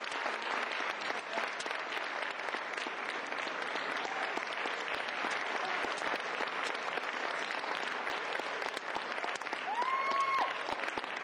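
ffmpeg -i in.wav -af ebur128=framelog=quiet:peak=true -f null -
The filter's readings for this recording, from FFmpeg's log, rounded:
Integrated loudness:
  I:         -35.3 LUFS
  Threshold: -45.3 LUFS
Loudness range:
  LRA:         1.8 LU
  Threshold: -55.5 LUFS
  LRA low:   -36.3 LUFS
  LRA high:  -34.5 LUFS
True peak:
  Peak:      -21.9 dBFS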